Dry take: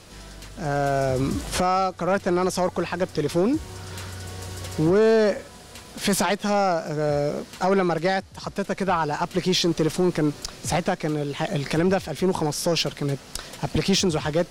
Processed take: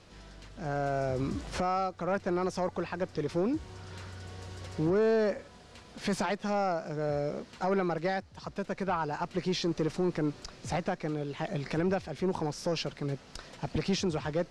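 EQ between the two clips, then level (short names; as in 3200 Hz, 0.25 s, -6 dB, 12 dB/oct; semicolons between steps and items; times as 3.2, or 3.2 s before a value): dynamic EQ 3300 Hz, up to -4 dB, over -46 dBFS, Q 3.5; air absorption 82 m; -8.0 dB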